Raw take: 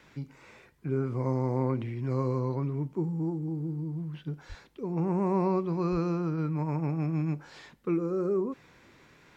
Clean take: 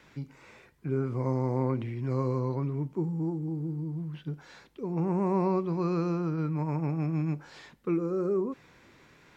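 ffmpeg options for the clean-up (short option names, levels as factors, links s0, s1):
-filter_complex "[0:a]asplit=3[s0][s1][s2];[s0]afade=t=out:st=4.48:d=0.02[s3];[s1]highpass=f=140:w=0.5412,highpass=f=140:w=1.3066,afade=t=in:st=4.48:d=0.02,afade=t=out:st=4.6:d=0.02[s4];[s2]afade=t=in:st=4.6:d=0.02[s5];[s3][s4][s5]amix=inputs=3:normalize=0,asplit=3[s6][s7][s8];[s6]afade=t=out:st=5.91:d=0.02[s9];[s7]highpass=f=140:w=0.5412,highpass=f=140:w=1.3066,afade=t=in:st=5.91:d=0.02,afade=t=out:st=6.03:d=0.02[s10];[s8]afade=t=in:st=6.03:d=0.02[s11];[s9][s10][s11]amix=inputs=3:normalize=0"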